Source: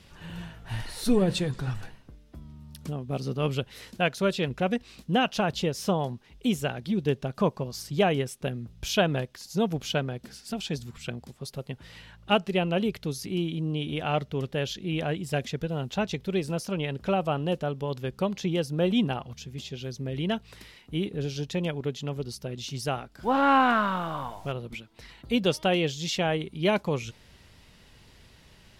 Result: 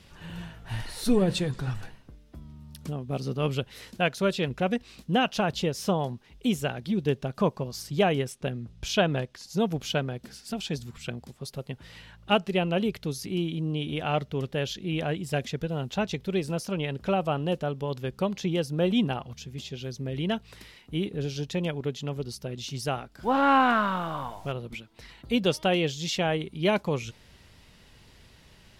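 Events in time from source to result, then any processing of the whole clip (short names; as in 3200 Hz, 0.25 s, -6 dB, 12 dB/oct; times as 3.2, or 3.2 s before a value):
8.32–9.53 Bessel low-pass 8500 Hz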